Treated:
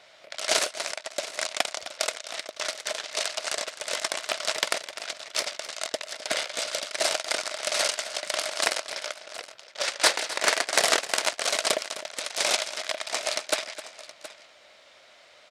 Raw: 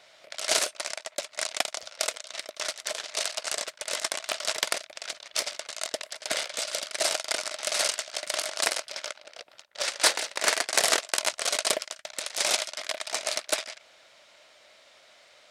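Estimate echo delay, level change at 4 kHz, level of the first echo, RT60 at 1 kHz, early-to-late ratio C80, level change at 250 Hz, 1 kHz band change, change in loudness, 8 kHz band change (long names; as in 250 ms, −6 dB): 258 ms, +1.0 dB, −14.5 dB, no reverb audible, no reverb audible, +2.5 dB, +2.5 dB, +1.0 dB, −0.5 dB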